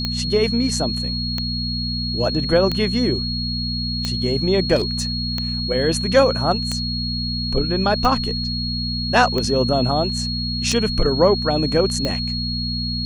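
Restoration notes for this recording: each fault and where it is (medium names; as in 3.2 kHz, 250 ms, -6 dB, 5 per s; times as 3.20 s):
hum 60 Hz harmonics 4 -26 dBFS
tick 45 rpm -9 dBFS
whine 4.3 kHz -25 dBFS
4.75–5.18 s: clipped -15.5 dBFS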